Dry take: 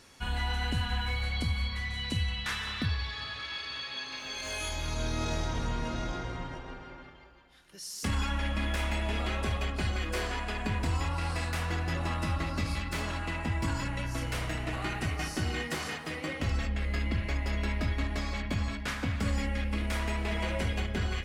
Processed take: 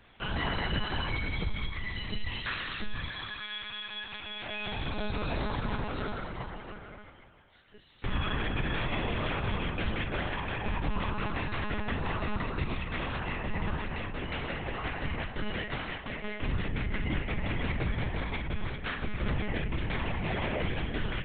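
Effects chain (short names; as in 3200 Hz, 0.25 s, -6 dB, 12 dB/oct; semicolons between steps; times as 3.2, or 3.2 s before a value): notches 60/120/180/240 Hz; monotone LPC vocoder at 8 kHz 210 Hz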